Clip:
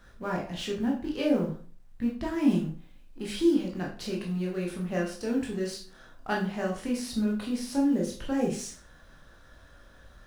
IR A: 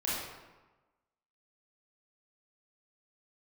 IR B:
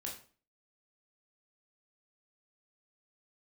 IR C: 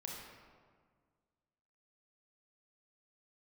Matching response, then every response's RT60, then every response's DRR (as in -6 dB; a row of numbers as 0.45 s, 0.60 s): B; 1.2 s, 0.40 s, 1.7 s; -8.0 dB, -2.0 dB, -2.0 dB